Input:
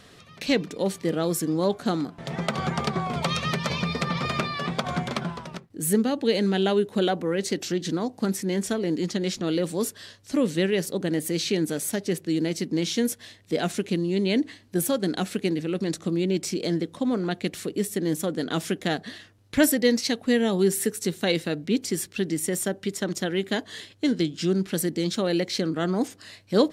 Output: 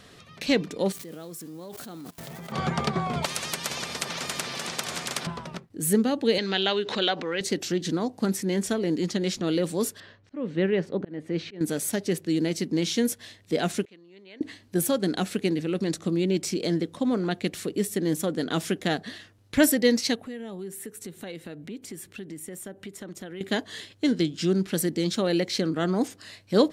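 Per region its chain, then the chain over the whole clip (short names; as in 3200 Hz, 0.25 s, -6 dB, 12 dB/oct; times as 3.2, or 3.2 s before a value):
0.92–2.52 switching spikes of -28 dBFS + level quantiser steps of 20 dB
3.25–5.27 HPF 110 Hz 24 dB/oct + delay with a stepping band-pass 0.26 s, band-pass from 220 Hz, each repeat 1.4 oct, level 0 dB + spectral compressor 4:1
6.38–7.41 LPF 4700 Hz 24 dB/oct + tilt +4 dB/oct + backwards sustainer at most 77 dB/s
10–11.61 LPF 2100 Hz + auto swell 0.336 s
13.85–14.41 LPF 1500 Hz + differentiator
20.15–23.41 bell 5100 Hz -8 dB 0.99 oct + compressor 3:1, threshold -39 dBFS
whole clip: dry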